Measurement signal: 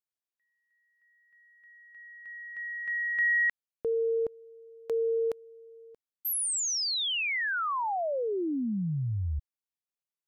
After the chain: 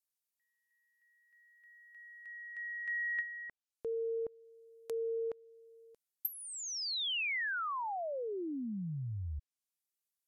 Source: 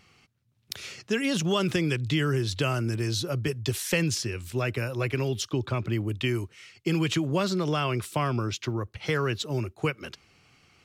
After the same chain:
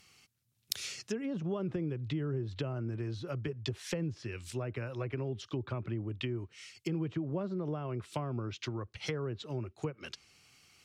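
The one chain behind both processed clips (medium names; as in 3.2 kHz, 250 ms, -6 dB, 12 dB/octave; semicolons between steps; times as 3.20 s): low-pass that closes with the level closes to 680 Hz, closed at -22.5 dBFS; pre-emphasis filter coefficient 0.8; trim +5.5 dB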